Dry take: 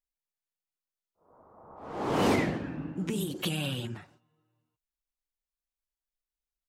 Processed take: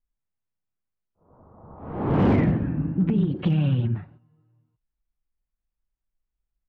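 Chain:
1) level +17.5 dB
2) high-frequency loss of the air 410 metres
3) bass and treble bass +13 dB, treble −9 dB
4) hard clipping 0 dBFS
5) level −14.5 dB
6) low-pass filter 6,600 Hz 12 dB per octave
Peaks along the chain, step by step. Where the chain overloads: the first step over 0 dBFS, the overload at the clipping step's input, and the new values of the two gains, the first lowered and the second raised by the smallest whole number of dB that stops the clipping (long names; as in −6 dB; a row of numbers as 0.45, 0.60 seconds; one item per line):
+2.0, +0.5, +7.5, 0.0, −14.5, −14.5 dBFS
step 1, 7.5 dB
step 1 +9.5 dB, step 5 −6.5 dB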